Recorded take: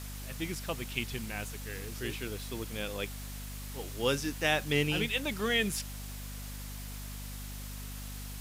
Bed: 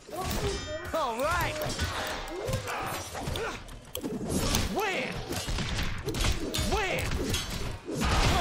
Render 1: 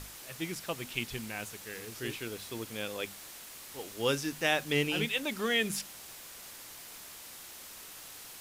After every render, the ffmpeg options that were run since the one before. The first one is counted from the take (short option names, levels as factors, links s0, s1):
-af "bandreject=f=50:t=h:w=6,bandreject=f=100:t=h:w=6,bandreject=f=150:t=h:w=6,bandreject=f=200:t=h:w=6,bandreject=f=250:t=h:w=6"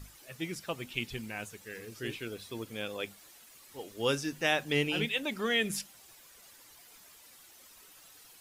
-af "afftdn=nr=11:nf=-48"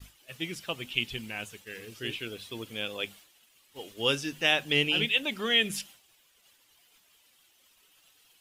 -af "equalizer=f=3000:w=2.3:g=9.5,agate=range=0.0224:threshold=0.00501:ratio=3:detection=peak"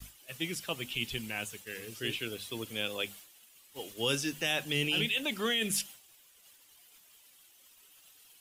-filter_complex "[0:a]acrossover=split=210|6600[s0][s1][s2];[s1]alimiter=limit=0.0841:level=0:latency=1:release=14[s3];[s2]acontrast=71[s4];[s0][s3][s4]amix=inputs=3:normalize=0"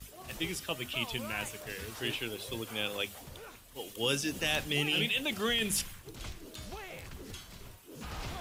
-filter_complex "[1:a]volume=0.168[s0];[0:a][s0]amix=inputs=2:normalize=0"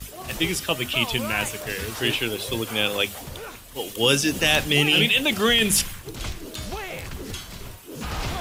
-af "volume=3.76"